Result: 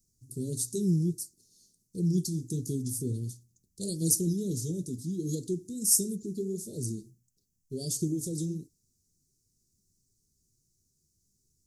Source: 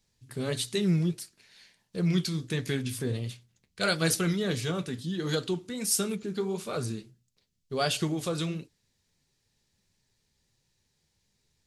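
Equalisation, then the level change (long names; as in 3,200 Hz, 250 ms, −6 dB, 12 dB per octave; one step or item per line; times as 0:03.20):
elliptic band-stop filter 360–5,900 Hz, stop band 60 dB
high-shelf EQ 6,700 Hz +8 dB
0.0 dB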